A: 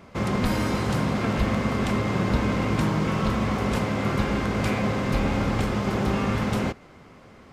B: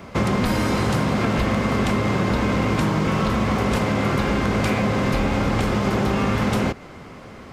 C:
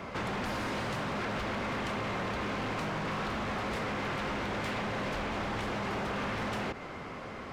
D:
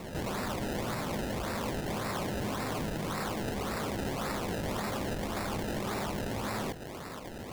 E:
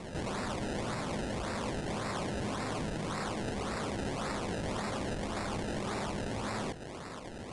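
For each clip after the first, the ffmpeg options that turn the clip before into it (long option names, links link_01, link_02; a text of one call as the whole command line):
ffmpeg -i in.wav -filter_complex "[0:a]acrossover=split=270|5800[link_01][link_02][link_03];[link_01]alimiter=limit=-21dB:level=0:latency=1[link_04];[link_04][link_02][link_03]amix=inputs=3:normalize=0,acompressor=threshold=-26dB:ratio=6,volume=9dB" out.wav
ffmpeg -i in.wav -filter_complex "[0:a]aeval=exprs='0.112*(abs(mod(val(0)/0.112+3,4)-2)-1)':channel_layout=same,alimiter=level_in=2.5dB:limit=-24dB:level=0:latency=1:release=27,volume=-2.5dB,asplit=2[link_01][link_02];[link_02]highpass=frequency=720:poles=1,volume=5dB,asoftclip=type=tanh:threshold=-26.5dB[link_03];[link_01][link_03]amix=inputs=2:normalize=0,lowpass=frequency=2800:poles=1,volume=-6dB" out.wav
ffmpeg -i in.wav -af "acrusher=samples=27:mix=1:aa=0.000001:lfo=1:lforange=27:lforate=1.8" out.wav
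ffmpeg -i in.wav -af "aresample=22050,aresample=44100,volume=-1.5dB" out.wav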